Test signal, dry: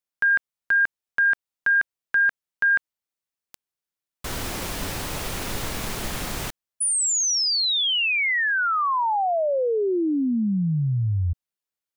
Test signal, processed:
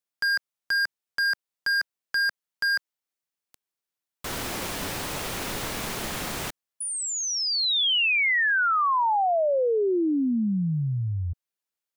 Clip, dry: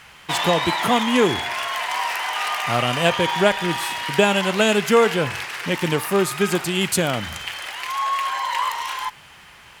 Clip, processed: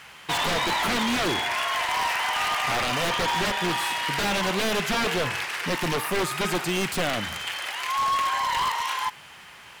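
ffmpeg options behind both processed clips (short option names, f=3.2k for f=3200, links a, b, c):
-filter_complex "[0:a]lowshelf=f=96:g=-10.5,aeval=exprs='0.112*(abs(mod(val(0)/0.112+3,4)-2)-1)':c=same,acrossover=split=4000[a][b];[b]acompressor=threshold=-31dB:ratio=4:attack=1:release=60[c];[a][c]amix=inputs=2:normalize=0"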